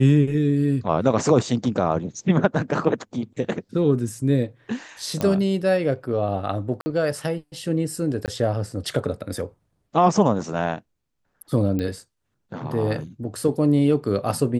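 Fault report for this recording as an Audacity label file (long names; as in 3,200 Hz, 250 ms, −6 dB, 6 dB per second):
5.210000	5.210000	click −11 dBFS
6.810000	6.860000	drop-out 50 ms
8.260000	8.280000	drop-out 18 ms
11.790000	11.790000	click −15 dBFS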